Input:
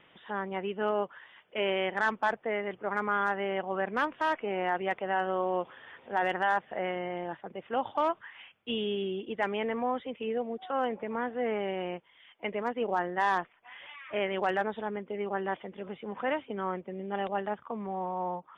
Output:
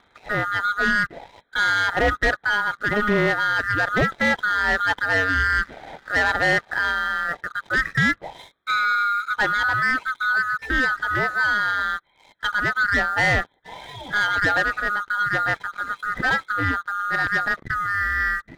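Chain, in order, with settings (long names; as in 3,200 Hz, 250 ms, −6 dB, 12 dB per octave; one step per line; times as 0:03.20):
neighbouring bands swapped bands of 1,000 Hz
low-pass filter 2,000 Hz 6 dB per octave
leveller curve on the samples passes 2
level +6 dB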